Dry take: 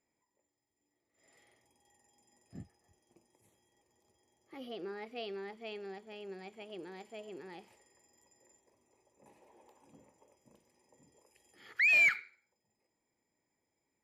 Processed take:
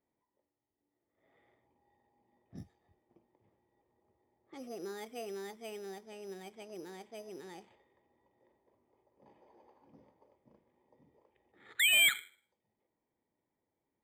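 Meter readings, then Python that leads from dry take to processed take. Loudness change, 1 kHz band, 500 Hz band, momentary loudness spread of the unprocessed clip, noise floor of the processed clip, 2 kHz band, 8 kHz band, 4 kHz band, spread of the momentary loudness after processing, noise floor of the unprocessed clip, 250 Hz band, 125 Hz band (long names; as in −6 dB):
+0.5 dB, −0.5 dB, 0.0 dB, 23 LU, below −85 dBFS, −3.0 dB, +17.0 dB, +15.0 dB, 23 LU, −85 dBFS, 0.0 dB, 0.0 dB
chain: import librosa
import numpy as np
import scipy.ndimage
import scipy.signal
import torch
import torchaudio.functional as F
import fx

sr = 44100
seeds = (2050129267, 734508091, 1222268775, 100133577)

y = np.repeat(scipy.signal.resample_poly(x, 1, 8), 8)[:len(x)]
y = fx.env_lowpass(y, sr, base_hz=1600.0, full_db=-43.0)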